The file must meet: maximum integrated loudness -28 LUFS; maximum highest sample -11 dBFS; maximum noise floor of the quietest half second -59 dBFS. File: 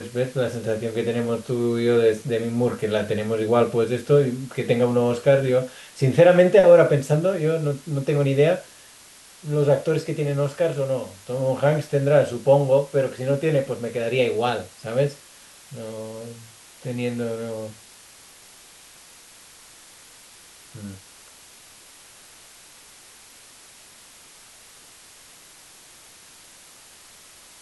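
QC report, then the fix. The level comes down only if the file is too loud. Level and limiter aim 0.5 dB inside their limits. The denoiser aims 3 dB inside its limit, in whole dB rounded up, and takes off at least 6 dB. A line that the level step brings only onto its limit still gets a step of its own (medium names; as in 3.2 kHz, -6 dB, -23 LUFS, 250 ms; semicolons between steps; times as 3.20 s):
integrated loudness -21.5 LUFS: fail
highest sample -4.0 dBFS: fail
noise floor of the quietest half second -48 dBFS: fail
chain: noise reduction 7 dB, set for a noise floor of -48 dBFS; trim -7 dB; peak limiter -11.5 dBFS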